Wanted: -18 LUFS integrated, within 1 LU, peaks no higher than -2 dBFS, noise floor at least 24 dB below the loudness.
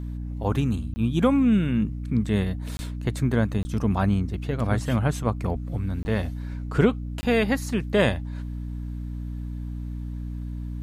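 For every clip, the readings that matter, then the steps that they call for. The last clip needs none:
dropouts 5; longest dropout 20 ms; hum 60 Hz; harmonics up to 300 Hz; hum level -30 dBFS; loudness -26.0 LUFS; peak -7.5 dBFS; loudness target -18.0 LUFS
-> interpolate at 0.94/2.77/3.63/6.03/7.21, 20 ms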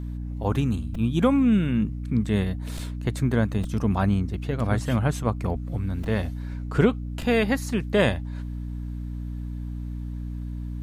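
dropouts 0; hum 60 Hz; harmonics up to 300 Hz; hum level -30 dBFS
-> de-hum 60 Hz, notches 5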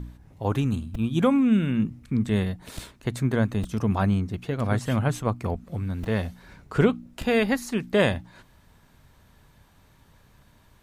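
hum none; loudness -25.5 LUFS; peak -8.5 dBFS; loudness target -18.0 LUFS
-> gain +7.5 dB; limiter -2 dBFS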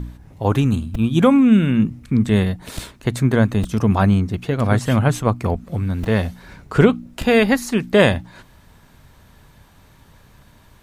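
loudness -18.0 LUFS; peak -2.0 dBFS; noise floor -50 dBFS

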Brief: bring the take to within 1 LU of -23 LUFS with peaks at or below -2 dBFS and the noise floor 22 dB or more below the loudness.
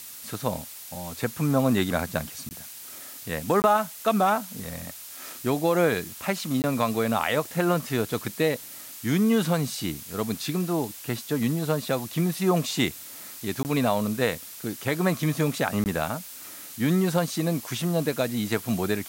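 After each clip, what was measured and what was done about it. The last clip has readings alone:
dropouts 5; longest dropout 19 ms; noise floor -42 dBFS; noise floor target -49 dBFS; loudness -26.5 LUFS; peak -9.0 dBFS; loudness target -23.0 LUFS
-> interpolate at 2.49/3.62/6.62/13.63/15.84, 19 ms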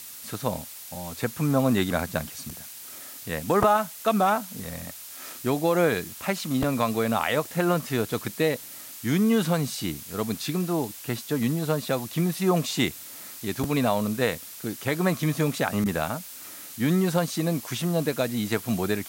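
dropouts 0; noise floor -42 dBFS; noise floor target -49 dBFS
-> denoiser 7 dB, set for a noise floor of -42 dBFS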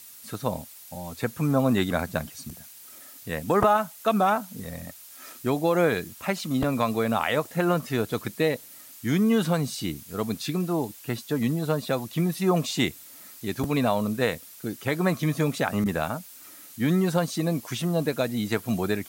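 noise floor -47 dBFS; noise floor target -49 dBFS
-> denoiser 6 dB, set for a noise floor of -47 dBFS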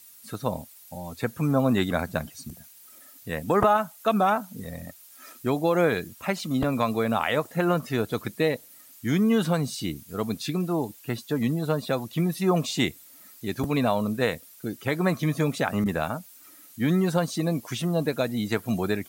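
noise floor -51 dBFS; loudness -26.5 LUFS; peak -7.5 dBFS; loudness target -23.0 LUFS
-> gain +3.5 dB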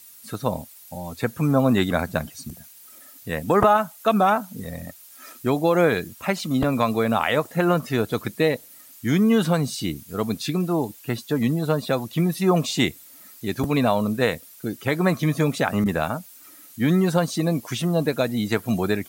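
loudness -23.0 LUFS; peak -4.0 dBFS; noise floor -47 dBFS

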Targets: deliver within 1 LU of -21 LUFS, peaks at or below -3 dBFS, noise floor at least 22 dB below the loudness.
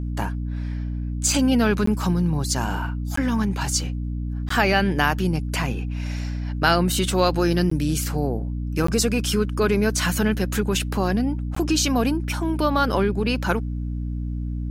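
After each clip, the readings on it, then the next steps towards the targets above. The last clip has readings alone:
dropouts 6; longest dropout 14 ms; hum 60 Hz; harmonics up to 300 Hz; hum level -25 dBFS; loudness -23.0 LUFS; peak -3.5 dBFS; loudness target -21.0 LUFS
-> interpolate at 1.86/3.16/4.49/7.7/8.87/11.55, 14 ms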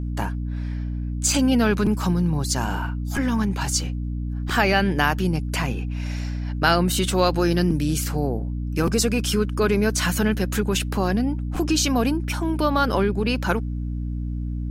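dropouts 0; hum 60 Hz; harmonics up to 300 Hz; hum level -25 dBFS
-> de-hum 60 Hz, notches 5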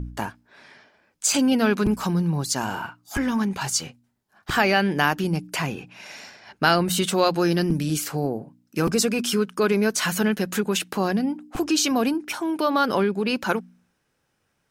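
hum none; loudness -23.0 LUFS; peak -4.0 dBFS; loudness target -21.0 LUFS
-> gain +2 dB; limiter -3 dBFS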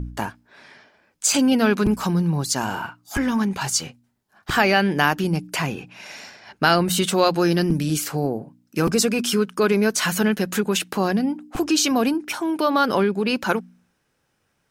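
loudness -21.5 LUFS; peak -3.0 dBFS; noise floor -70 dBFS

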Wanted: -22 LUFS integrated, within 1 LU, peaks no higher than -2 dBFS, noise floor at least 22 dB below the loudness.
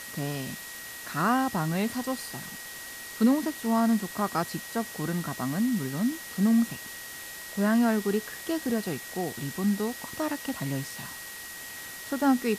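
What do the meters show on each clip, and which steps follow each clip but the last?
steady tone 1900 Hz; tone level -43 dBFS; noise floor -41 dBFS; noise floor target -52 dBFS; loudness -29.5 LUFS; peak -12.5 dBFS; loudness target -22.0 LUFS
-> notch 1900 Hz, Q 30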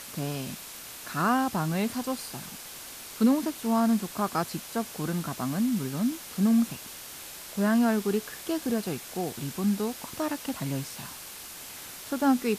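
steady tone none; noise floor -43 dBFS; noise floor target -51 dBFS
-> denoiser 8 dB, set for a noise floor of -43 dBFS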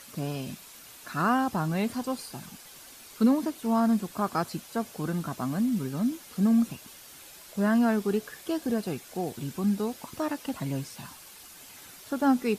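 noise floor -49 dBFS; noise floor target -51 dBFS
-> denoiser 6 dB, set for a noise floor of -49 dBFS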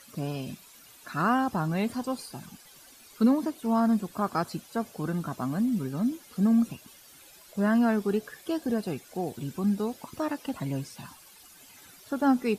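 noise floor -53 dBFS; loudness -29.0 LUFS; peak -13.0 dBFS; loudness target -22.0 LUFS
-> gain +7 dB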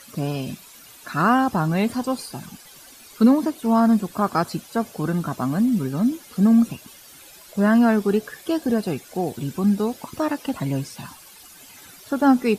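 loudness -22.0 LUFS; peak -6.0 dBFS; noise floor -46 dBFS

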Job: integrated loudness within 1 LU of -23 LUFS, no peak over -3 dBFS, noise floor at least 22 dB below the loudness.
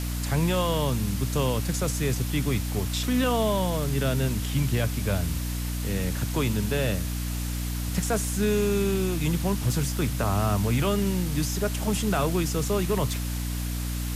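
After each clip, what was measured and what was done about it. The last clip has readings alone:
hum 60 Hz; harmonics up to 300 Hz; hum level -27 dBFS; noise floor -30 dBFS; noise floor target -49 dBFS; loudness -26.5 LUFS; peak -13.0 dBFS; loudness target -23.0 LUFS
-> de-hum 60 Hz, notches 5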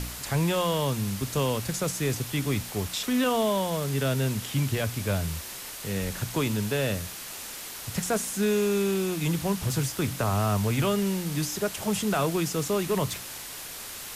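hum none; noise floor -39 dBFS; noise floor target -50 dBFS
-> denoiser 11 dB, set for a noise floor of -39 dBFS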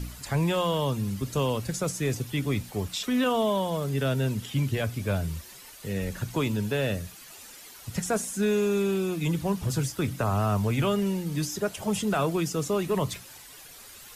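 noise floor -47 dBFS; noise floor target -50 dBFS
-> denoiser 6 dB, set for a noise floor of -47 dBFS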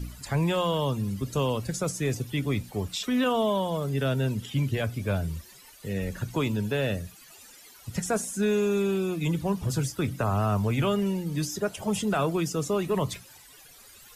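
noise floor -52 dBFS; loudness -28.0 LUFS; peak -15.5 dBFS; loudness target -23.0 LUFS
-> gain +5 dB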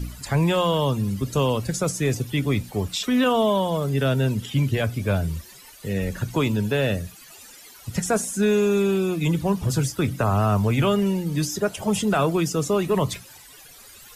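loudness -23.0 LUFS; peak -10.5 dBFS; noise floor -47 dBFS

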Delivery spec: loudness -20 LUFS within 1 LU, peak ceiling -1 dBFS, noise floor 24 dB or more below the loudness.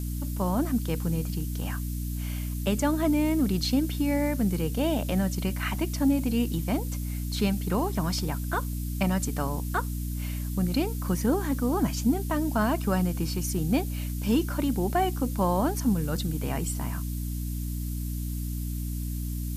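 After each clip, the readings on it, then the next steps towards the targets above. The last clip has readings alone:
hum 60 Hz; harmonics up to 300 Hz; hum level -29 dBFS; noise floor -32 dBFS; noise floor target -53 dBFS; loudness -28.5 LUFS; peak -12.5 dBFS; loudness target -20.0 LUFS
-> de-hum 60 Hz, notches 5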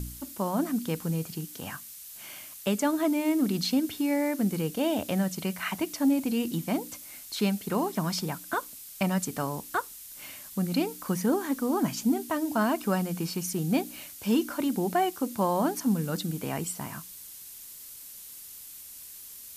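hum none; noise floor -45 dBFS; noise floor target -53 dBFS
-> denoiser 8 dB, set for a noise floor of -45 dBFS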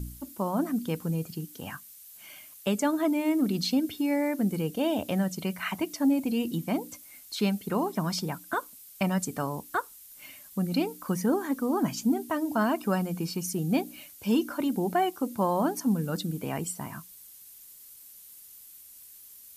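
noise floor -50 dBFS; noise floor target -53 dBFS
-> denoiser 6 dB, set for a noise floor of -50 dBFS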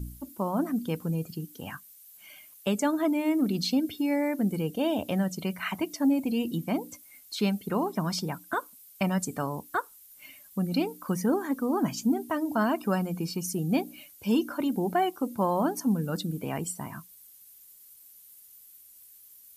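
noise floor -54 dBFS; loudness -29.0 LUFS; peak -13.5 dBFS; loudness target -20.0 LUFS
-> gain +9 dB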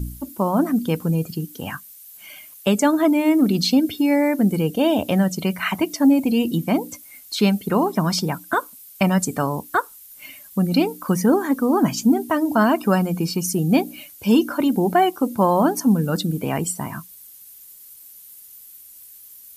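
loudness -20.0 LUFS; peak -4.5 dBFS; noise floor -45 dBFS

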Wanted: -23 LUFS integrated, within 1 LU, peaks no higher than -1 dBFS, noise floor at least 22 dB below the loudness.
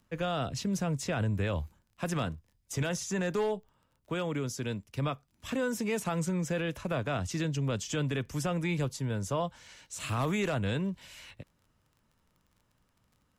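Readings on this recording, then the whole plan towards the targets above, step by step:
ticks 25/s; loudness -33.0 LUFS; peak -20.5 dBFS; loudness target -23.0 LUFS
-> de-click; gain +10 dB

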